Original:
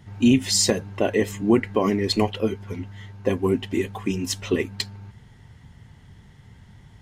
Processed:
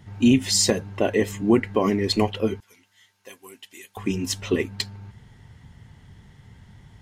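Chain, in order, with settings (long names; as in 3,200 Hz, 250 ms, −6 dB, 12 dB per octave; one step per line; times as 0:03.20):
0:02.60–0:03.97: first difference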